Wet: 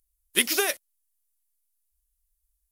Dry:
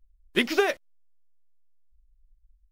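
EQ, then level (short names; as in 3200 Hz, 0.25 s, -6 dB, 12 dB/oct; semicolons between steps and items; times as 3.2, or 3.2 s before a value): tilt +4 dB/oct; low shelf 460 Hz +8.5 dB; bell 11000 Hz +13.5 dB 0.98 oct; -5.0 dB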